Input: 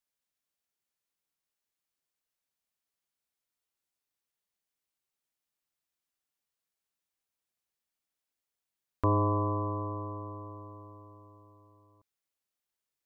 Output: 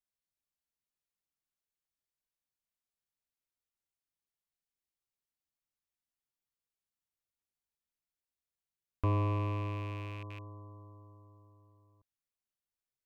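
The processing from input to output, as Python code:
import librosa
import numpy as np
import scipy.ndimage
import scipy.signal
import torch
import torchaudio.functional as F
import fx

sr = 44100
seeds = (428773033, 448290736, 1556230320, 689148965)

y = fx.rattle_buzz(x, sr, strikes_db=-41.0, level_db=-29.0)
y = fx.low_shelf(y, sr, hz=150.0, db=11.0)
y = F.gain(torch.from_numpy(y), -8.5).numpy()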